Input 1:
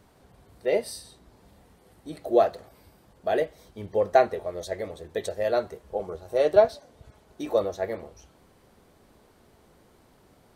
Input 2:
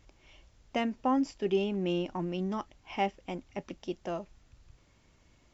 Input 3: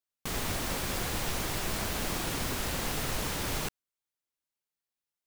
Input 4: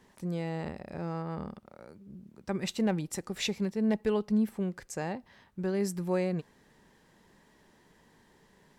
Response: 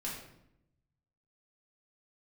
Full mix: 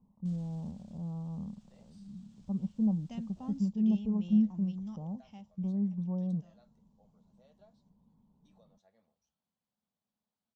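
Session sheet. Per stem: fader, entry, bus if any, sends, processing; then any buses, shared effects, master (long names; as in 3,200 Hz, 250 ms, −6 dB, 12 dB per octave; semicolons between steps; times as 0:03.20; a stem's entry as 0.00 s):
−16.5 dB, 1.05 s, no send, high-pass filter 1,300 Hz 6 dB per octave; high-shelf EQ 3,900 Hz −9 dB; downward compressor 2 to 1, threshold −37 dBFS, peak gain reduction 10 dB
0:05.14 −10.5 dB → 0:05.50 −20 dB, 2.35 s, no send, high-shelf EQ 4,300 Hz +11 dB
−11.5 dB, 0.00 s, no send, brickwall limiter −30 dBFS, peak gain reduction 10 dB; automatic ducking −11 dB, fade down 1.10 s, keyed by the fourth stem
−2.5 dB, 0.00 s, no send, elliptic low-pass filter 1,100 Hz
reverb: not used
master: drawn EQ curve 130 Hz 0 dB, 210 Hz +6 dB, 350 Hz −18 dB, 550 Hz −13 dB, 820 Hz −11 dB, 1,300 Hz −15 dB, 2,100 Hz −18 dB, 3,300 Hz −8 dB, 7,900 Hz −7 dB, 11,000 Hz −28 dB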